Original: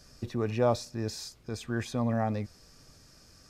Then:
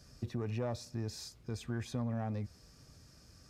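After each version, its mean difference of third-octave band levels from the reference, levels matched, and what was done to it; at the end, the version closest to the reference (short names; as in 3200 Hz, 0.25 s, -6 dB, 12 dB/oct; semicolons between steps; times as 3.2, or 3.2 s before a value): 3.0 dB: one diode to ground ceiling -19.5 dBFS; HPF 53 Hz; low shelf 170 Hz +9.5 dB; compressor, threshold -28 dBFS, peak gain reduction 7 dB; gain -5 dB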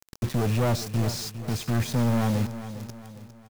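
9.0 dB: bell 150 Hz +12 dB 1.3 oct; soft clip -26.5 dBFS, distortion -8 dB; bit-crush 7-bit; on a send: feedback echo 0.405 s, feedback 44%, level -12.5 dB; on the sum: gain +6 dB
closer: first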